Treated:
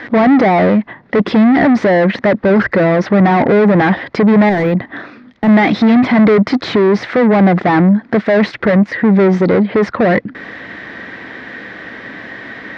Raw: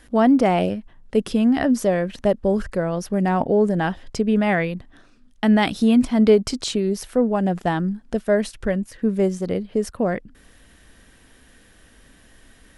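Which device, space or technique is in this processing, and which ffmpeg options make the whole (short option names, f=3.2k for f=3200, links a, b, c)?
overdrive pedal into a guitar cabinet: -filter_complex "[0:a]asplit=2[a][b];[b]highpass=f=720:p=1,volume=35dB,asoftclip=type=tanh:threshold=-4dB[c];[a][c]amix=inputs=2:normalize=0,lowpass=f=1.2k:p=1,volume=-6dB,highpass=88,equalizer=f=120:t=q:w=4:g=6,equalizer=f=200:t=q:w=4:g=4,equalizer=f=320:t=q:w=4:g=4,equalizer=f=2k:t=q:w=4:g=9,equalizer=f=2.9k:t=q:w=4:g=-6,lowpass=f=4.4k:w=0.5412,lowpass=f=4.4k:w=1.3066,asettb=1/sr,asplit=3[d][e][f];[d]atrim=end=4.494[g];[e]atrim=start=4.49:end=5.49,asetpts=PTS-STARTPTS,afade=t=in:d=0.004:c=qsin,afade=t=out:st=0.996:d=0.004:c=qsin,deesser=0.85[h];[f]atrim=start=5.486[i];[g][h]acrossfade=d=0.004:c1=hsin:c2=qsin[j];[j][i]acrossfade=d=0.004:c1=qsin:c2=hsin"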